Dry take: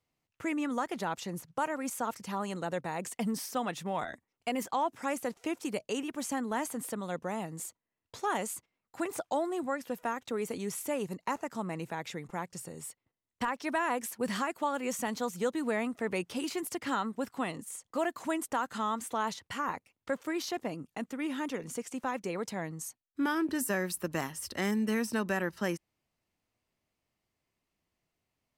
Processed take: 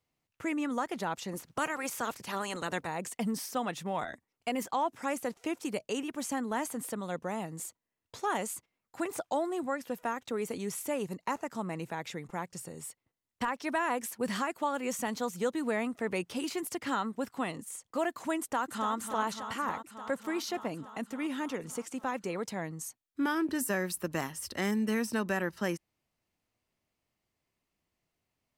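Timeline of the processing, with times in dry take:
1.31–2.86 spectral limiter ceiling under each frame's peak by 15 dB
18.39–18.95 echo throw 0.29 s, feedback 80%, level -8.5 dB

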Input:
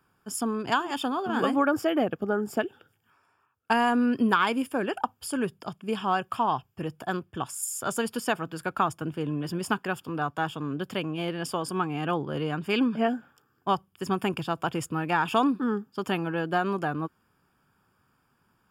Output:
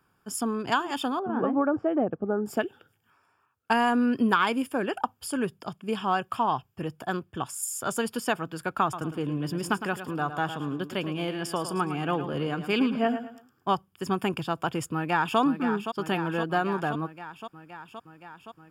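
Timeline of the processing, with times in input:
1.19–2.46 LPF 1000 Hz
8.82–13.69 feedback echo 0.109 s, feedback 32%, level -10.5 dB
14.93–15.39 echo throw 0.52 s, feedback 75%, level -8.5 dB

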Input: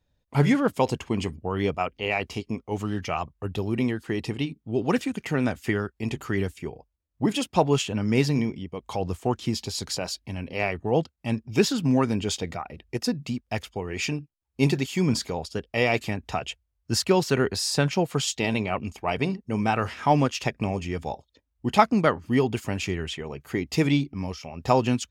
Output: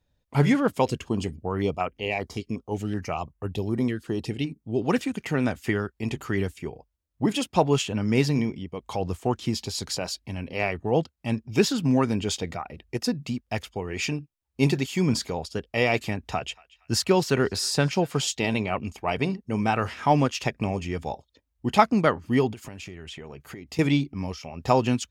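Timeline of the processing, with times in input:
0.86–4.82 stepped notch 5.3 Hz 850–4200 Hz
16.1–18.27 narrowing echo 0.234 s, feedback 48%, band-pass 2500 Hz, level -21 dB
22.52–23.79 compressor 16:1, threshold -35 dBFS

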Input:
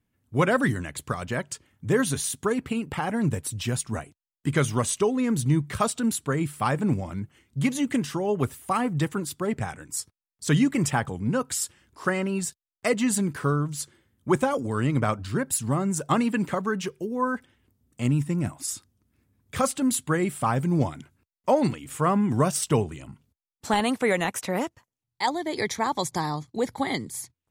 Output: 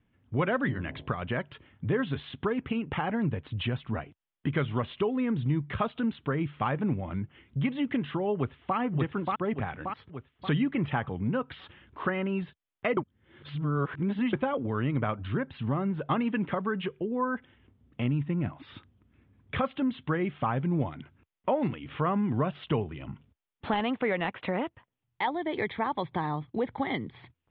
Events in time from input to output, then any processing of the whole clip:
0.6–1.1 de-hum 51.98 Hz, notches 20
8.35–8.77 echo throw 0.58 s, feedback 35%, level -2 dB
12.97–14.33 reverse
whole clip: steep low-pass 3500 Hz 72 dB/oct; compressor 2:1, threshold -39 dBFS; gain +5.5 dB

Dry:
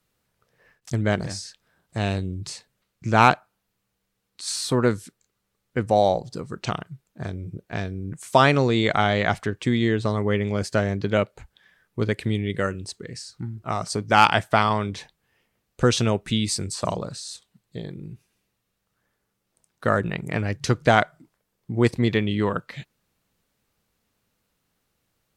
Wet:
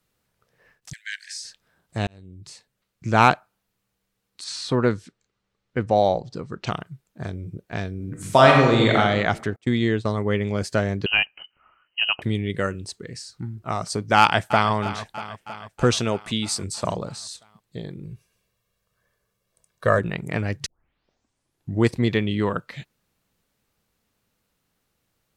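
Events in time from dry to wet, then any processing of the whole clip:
0.93–1.44 steep high-pass 1600 Hz 96 dB/oct
2.07–3.14 fade in
4.44–6.67 LPF 5100 Hz
7.95–8.97 reverb throw, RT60 1.1 s, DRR -0.5 dB
9.56–10.41 expander -24 dBFS
11.06–12.22 inverted band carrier 3000 Hz
14.18–14.71 echo throw 0.32 s, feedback 70%, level -14 dB
15.95–16.63 low shelf 140 Hz -9.5 dB
18.04–19.99 comb 1.8 ms
20.66 tape start 1.21 s

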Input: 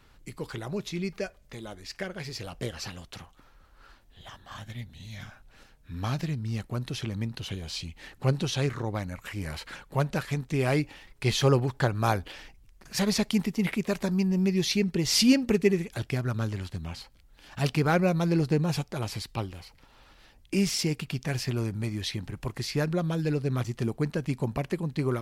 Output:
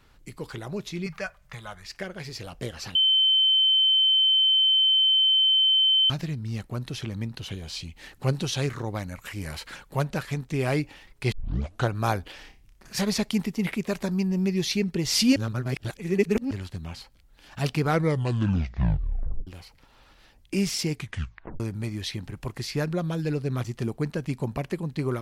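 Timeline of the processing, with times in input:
1.06–1.86 EQ curve 100 Hz 0 dB, 150 Hz +7 dB, 290 Hz -17 dB, 600 Hz 0 dB, 1200 Hz +10 dB, 2200 Hz +5 dB, 4100 Hz 0 dB
2.95–6.1 bleep 3080 Hz -17 dBFS
7.96–10.04 high shelf 4200 Hz +4.5 dB
11.32 tape start 0.56 s
12.38–13.01 flutter echo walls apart 5.2 m, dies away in 0.28 s
15.36–16.51 reverse
17.84 tape stop 1.63 s
20.93 tape stop 0.67 s

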